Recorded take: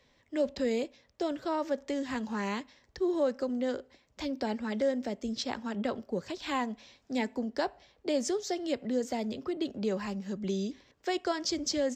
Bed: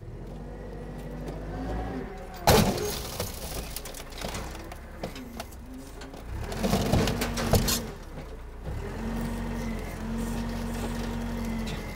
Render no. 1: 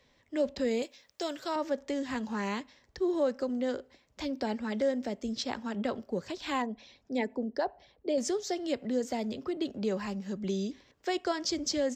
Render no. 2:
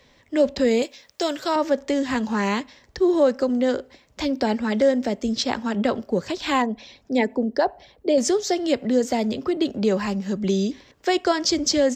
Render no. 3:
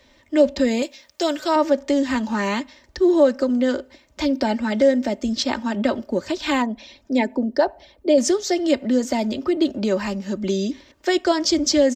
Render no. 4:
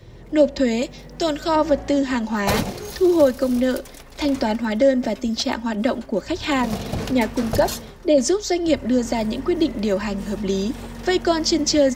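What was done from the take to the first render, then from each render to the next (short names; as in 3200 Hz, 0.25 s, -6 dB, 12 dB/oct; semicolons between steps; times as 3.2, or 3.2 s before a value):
0.82–1.56 tilt +3 dB/oct; 6.62–8.18 formant sharpening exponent 1.5
gain +10.5 dB
comb 3.3 ms, depth 57%
add bed -2.5 dB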